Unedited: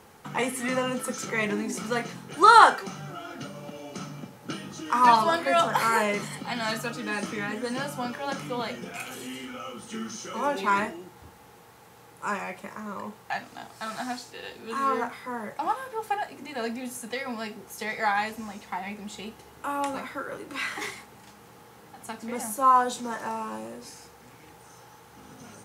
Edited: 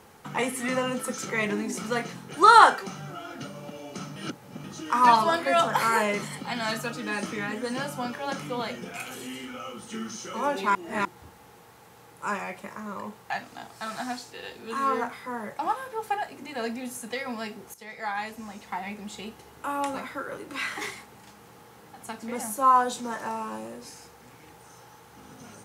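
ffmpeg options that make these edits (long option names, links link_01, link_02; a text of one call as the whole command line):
ffmpeg -i in.wav -filter_complex "[0:a]asplit=6[link_01][link_02][link_03][link_04][link_05][link_06];[link_01]atrim=end=4.162[link_07];[link_02]atrim=start=4.158:end=4.642,asetpts=PTS-STARTPTS,areverse[link_08];[link_03]atrim=start=4.638:end=10.752[link_09];[link_04]atrim=start=10.748:end=11.052,asetpts=PTS-STARTPTS,areverse[link_10];[link_05]atrim=start=11.048:end=17.74,asetpts=PTS-STARTPTS,afade=type=out:start_time=6.688:duration=0.004:curve=hsin:silence=0.199526[link_11];[link_06]atrim=start=17.74,asetpts=PTS-STARTPTS,afade=type=in:duration=1.01:silence=0.199526[link_12];[link_07][link_08]acrossfade=duration=0.004:curve1=hsin:curve2=hsin[link_13];[link_13][link_09]acrossfade=duration=0.004:curve1=hsin:curve2=hsin[link_14];[link_14][link_10]acrossfade=duration=0.004:curve1=hsin:curve2=hsin[link_15];[link_11][link_12]concat=n=2:v=0:a=1[link_16];[link_15][link_16]acrossfade=duration=0.004:curve1=hsin:curve2=hsin" out.wav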